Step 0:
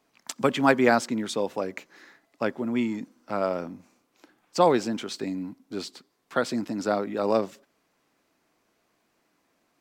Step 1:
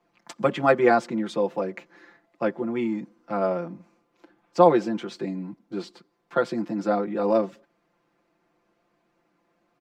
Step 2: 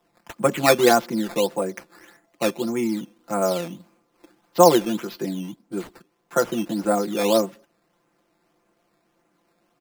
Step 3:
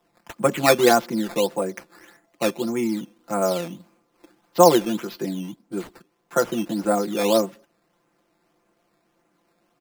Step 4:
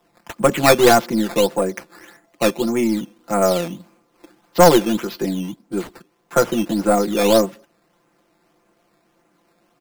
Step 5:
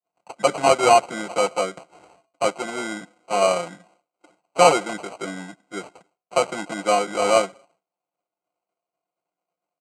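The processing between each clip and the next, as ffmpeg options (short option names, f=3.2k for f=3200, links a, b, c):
-filter_complex "[0:a]lowpass=f=1.5k:p=1,aecho=1:1:5.8:0.93,acrossover=split=120[a][b];[a]acompressor=threshold=-54dB:ratio=6[c];[c][b]amix=inputs=2:normalize=0"
-af "acrusher=samples=10:mix=1:aa=0.000001:lfo=1:lforange=10:lforate=1.7,volume=2.5dB"
-af anull
-af "aeval=exprs='(tanh(3.16*val(0)+0.35)-tanh(0.35))/3.16':c=same,volume=6.5dB"
-af "acrusher=samples=25:mix=1:aa=0.000001,agate=range=-33dB:threshold=-48dB:ratio=3:detection=peak,highpass=230,equalizer=f=230:t=q:w=4:g=-10,equalizer=f=350:t=q:w=4:g=-8,equalizer=f=700:t=q:w=4:g=7,equalizer=f=3.5k:t=q:w=4:g=-6,equalizer=f=5.4k:t=q:w=4:g=-6,equalizer=f=8.2k:t=q:w=4:g=6,lowpass=f=8.3k:w=0.5412,lowpass=f=8.3k:w=1.3066,volume=-3.5dB"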